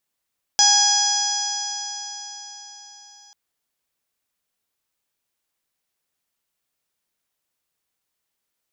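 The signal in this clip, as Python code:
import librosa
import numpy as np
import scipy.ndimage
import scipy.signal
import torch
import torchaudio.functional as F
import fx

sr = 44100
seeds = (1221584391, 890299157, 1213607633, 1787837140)

y = fx.additive_stiff(sr, length_s=2.74, hz=821.0, level_db=-20, upper_db=(-7.0, -19.5, -2.0, -13.0, 4.5, 5.0, -3.5, -18.5), decay_s=4.54, stiffness=0.001)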